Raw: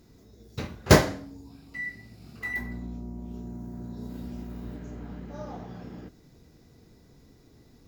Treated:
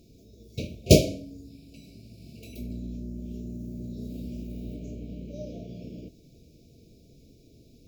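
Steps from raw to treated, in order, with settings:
brick-wall band-stop 690–2,200 Hz
0:02.70–0:04.94: multiband upward and downward compressor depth 40%
level +1 dB

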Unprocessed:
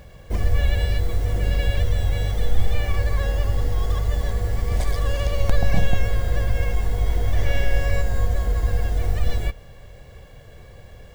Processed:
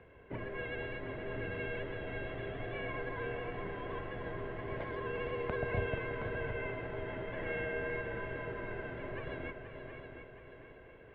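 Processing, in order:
echo machine with several playback heads 240 ms, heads second and third, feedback 46%, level −9 dB
single-sideband voice off tune −83 Hz 150–2,800 Hz
level −7.5 dB

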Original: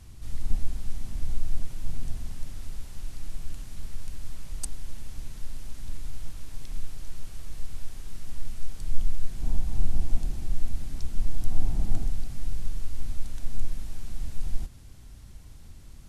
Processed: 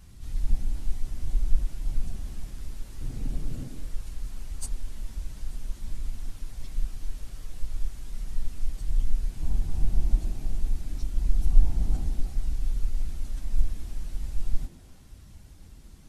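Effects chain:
random phases in long frames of 50 ms
0:03.01–0:03.68: octave-band graphic EQ 125/250/500 Hz +12/+10/+9 dB
echo through a band-pass that steps 111 ms, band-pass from 260 Hz, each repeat 0.7 octaves, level −2 dB
level −1.5 dB

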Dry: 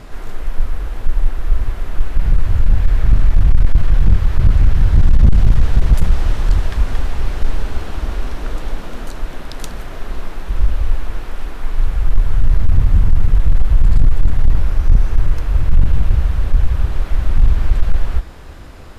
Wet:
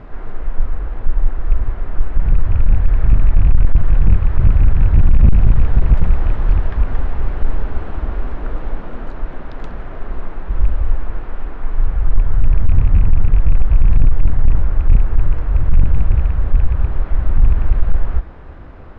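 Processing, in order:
loose part that buzzes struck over −9 dBFS, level −21 dBFS
low-pass filter 1,700 Hz 12 dB per octave

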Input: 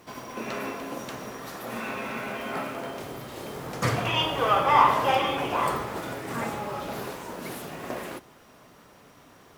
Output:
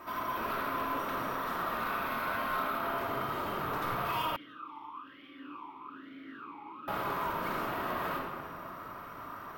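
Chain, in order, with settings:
parametric band 1,200 Hz +15 dB 1 octave
downward compressor 5 to 1, threshold −27 dBFS, peak gain reduction 22 dB
soft clipping −32 dBFS, distortion −9 dB
high-frequency loss of the air 100 metres
bad sample-rate conversion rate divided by 3×, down none, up hold
rectangular room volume 2,600 cubic metres, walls mixed, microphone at 2.8 metres
0:04.36–0:06.88: formant filter swept between two vowels i-u 1.1 Hz
level −2.5 dB

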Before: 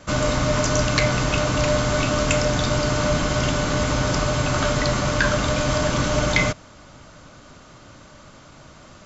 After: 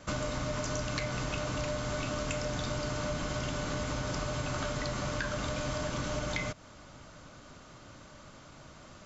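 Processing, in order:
downward compressor, threshold −25 dBFS, peak gain reduction 10.5 dB
level −6 dB

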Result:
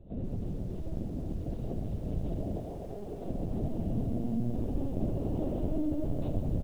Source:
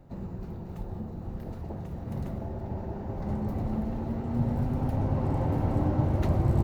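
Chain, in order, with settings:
0:02.56–0:03.29: high-pass filter 460 Hz 6 dB per octave
flat-topped bell 1,400 Hz −15.5 dB
0:04.51–0:06.05: comb filter 3.3 ms, depth 87%
downward compressor 8 to 1, threshold −26 dBFS, peak gain reduction 8.5 dB
brickwall limiter −26.5 dBFS, peak gain reduction 6.5 dB
high-frequency loss of the air 60 metres
reverse bouncing-ball delay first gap 30 ms, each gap 1.15×, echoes 5
linear-prediction vocoder at 8 kHz pitch kept
feedback echo at a low word length 138 ms, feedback 80%, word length 9 bits, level −13 dB

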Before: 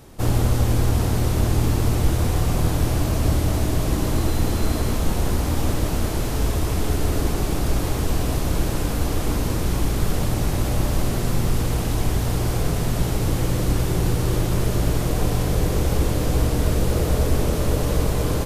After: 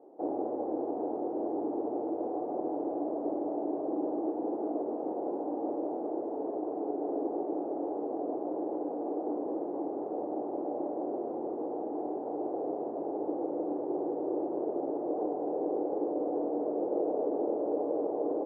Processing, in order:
variable-slope delta modulation 16 kbit/s
Chebyshev band-pass filter 300–800 Hz, order 3
level −2 dB

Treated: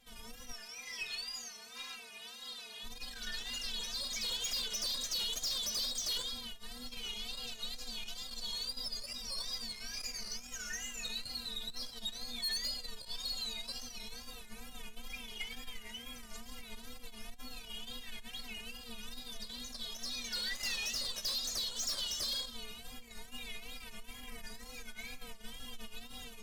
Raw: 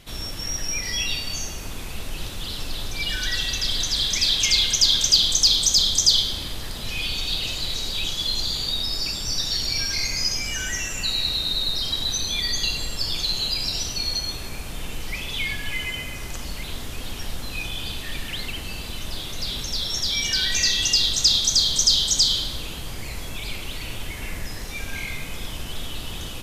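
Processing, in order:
0:00.53–0:02.83: meter weighting curve A
0:01.75–0:01.96: gain on a spectral selection 880–6,400 Hz +8 dB
parametric band 310 Hz −4 dB 0.94 octaves
stiff-string resonator 230 Hz, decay 0.28 s, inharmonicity 0.008
tube saturation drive 33 dB, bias 0.45
tape wow and flutter 120 cents
level +1 dB

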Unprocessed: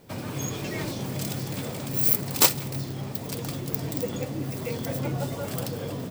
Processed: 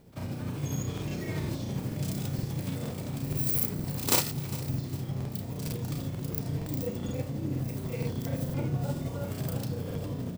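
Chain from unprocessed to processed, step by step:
low-shelf EQ 230 Hz +11.5 dB
repeating echo 238 ms, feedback 40%, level −18 dB
time stretch by overlap-add 1.7×, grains 162 ms
regular buffer underruns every 0.47 s, samples 2,048, repeat, from 0:00.93
level −6.5 dB

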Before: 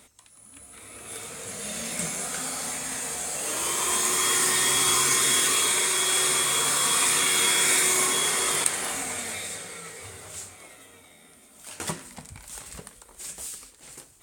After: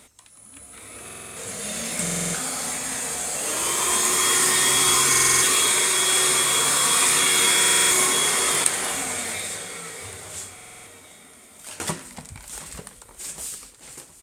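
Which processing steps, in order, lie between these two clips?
on a send: repeating echo 733 ms, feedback 52%, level −19 dB
on the sum: downsampling to 32,000 Hz
buffer that repeats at 0:01.04/0:02.02/0:05.10/0:07.59/0:10.54, samples 2,048, times 6
level +3.5 dB

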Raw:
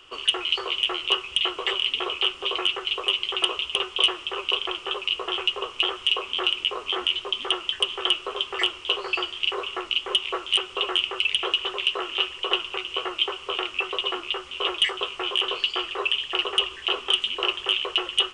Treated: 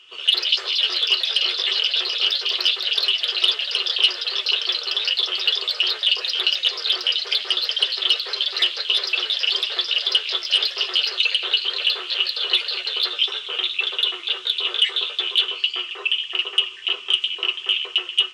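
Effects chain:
notch comb filter 280 Hz
delay with pitch and tempo change per echo 87 ms, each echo +3 semitones, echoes 3
meter weighting curve D
level −7.5 dB

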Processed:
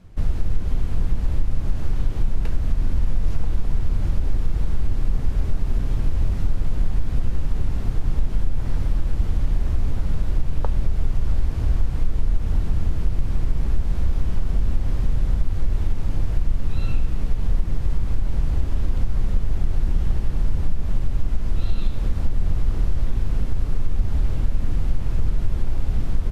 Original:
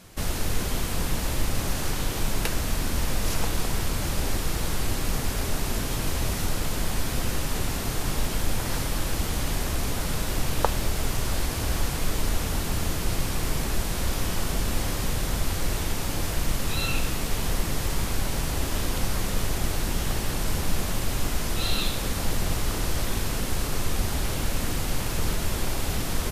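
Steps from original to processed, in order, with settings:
RIAA equalisation playback
downward compressor 4 to 1, threshold −5 dBFS, peak gain reduction 7.5 dB
level −7.5 dB

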